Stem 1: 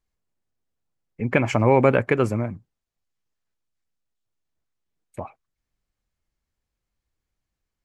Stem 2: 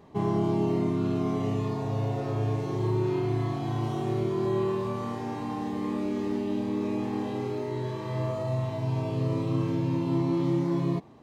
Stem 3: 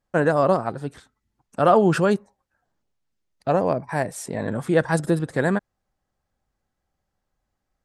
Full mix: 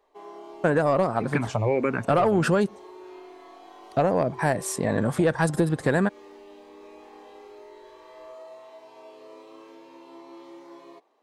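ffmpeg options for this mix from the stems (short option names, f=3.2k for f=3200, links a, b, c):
-filter_complex "[0:a]asplit=2[a][b];[b]afreqshift=-1.7[c];[a][c]amix=inputs=2:normalize=1,volume=-3dB[d];[1:a]highpass=f=420:w=0.5412,highpass=f=420:w=1.3066,volume=-10dB[e];[2:a]acontrast=82,adelay=500,volume=-3dB[f];[d][e][f]amix=inputs=3:normalize=0,acompressor=threshold=-18dB:ratio=6"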